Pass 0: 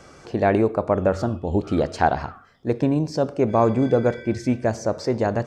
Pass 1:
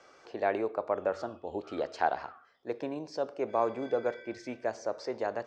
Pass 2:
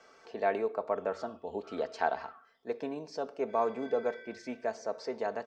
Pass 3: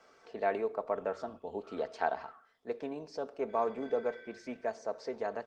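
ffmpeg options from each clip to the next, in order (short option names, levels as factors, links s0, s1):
-filter_complex "[0:a]acrossover=split=350 6600:gain=0.1 1 0.1[s0][s1][s2];[s0][s1][s2]amix=inputs=3:normalize=0,volume=0.376"
-af "aecho=1:1:4.5:0.52,volume=0.794"
-af "volume=0.841" -ar 48000 -c:a libopus -b:a 20k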